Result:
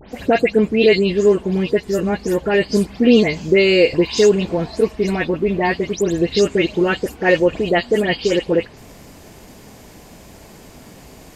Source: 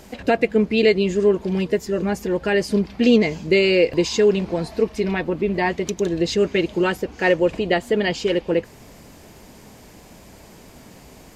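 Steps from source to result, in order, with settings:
every frequency bin delayed by itself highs late, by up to 128 ms
level +3.5 dB

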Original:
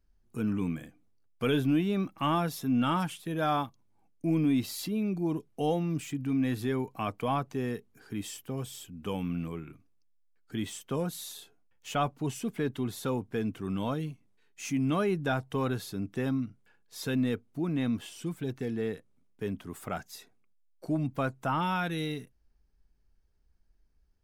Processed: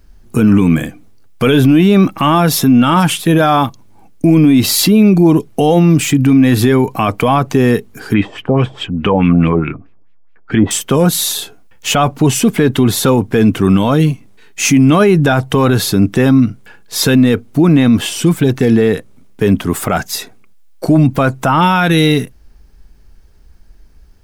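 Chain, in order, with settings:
0:08.14–0:10.71: auto-filter low-pass sine 4.7 Hz 630–2,800 Hz
boost into a limiter +26.5 dB
level −1 dB

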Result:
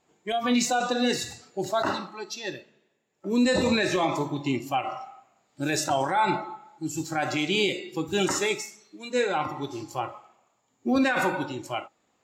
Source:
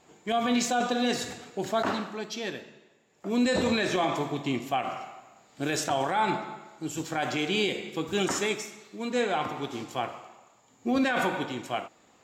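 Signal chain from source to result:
noise reduction from a noise print of the clip's start 13 dB
level +3 dB

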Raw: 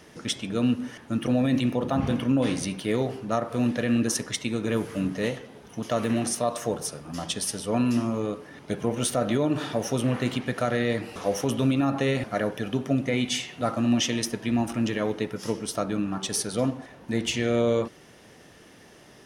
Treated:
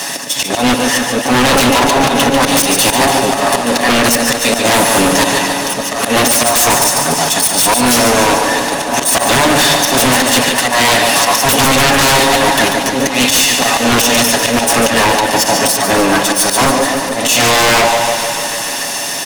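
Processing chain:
lower of the sound and its delayed copy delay 1.1 ms
bass and treble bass −13 dB, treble +10 dB
volume swells 176 ms
high-pass filter 140 Hz 24 dB per octave
in parallel at −2 dB: downward compressor, threshold −38 dBFS, peak gain reduction 14 dB
on the sum: comb filter 7.2 ms, depth 54%
volume swells 148 ms
on a send: repeating echo 143 ms, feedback 57%, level −10.5 dB
on the sum: sine wavefolder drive 16 dB, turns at −11.5 dBFS
feedback echo with a swinging delay time 148 ms, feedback 78%, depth 50 cents, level −11.5 dB
level +4.5 dB

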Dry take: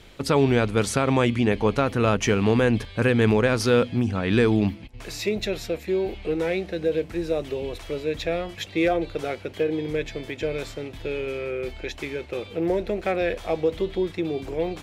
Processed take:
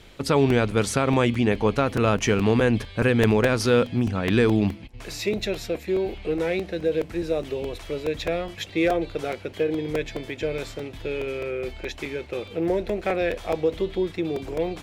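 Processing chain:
regular buffer underruns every 0.21 s, samples 128, repeat, from 0:00.50

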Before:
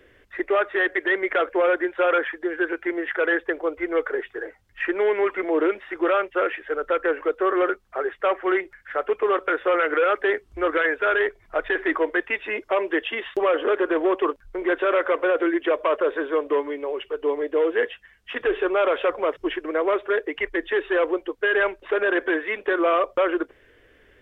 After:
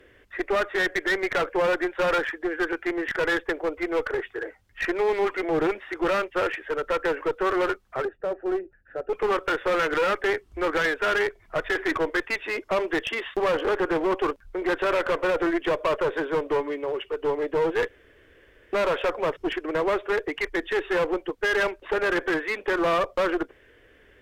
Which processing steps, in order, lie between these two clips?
0:08.05–0:09.13: moving average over 41 samples
asymmetric clip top −25 dBFS, bottom −15 dBFS
0:17.88–0:18.73: fill with room tone

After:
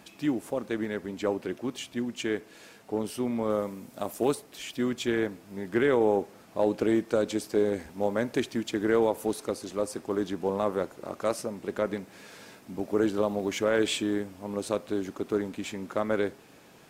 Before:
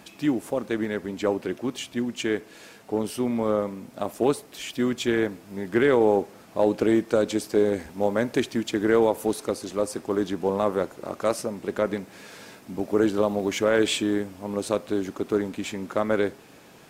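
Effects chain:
0:03.50–0:04.35: high-shelf EQ 6,500 Hz +9 dB
0:05.81–0:06.21: notch filter 4,500 Hz, Q 6.9
level −4 dB

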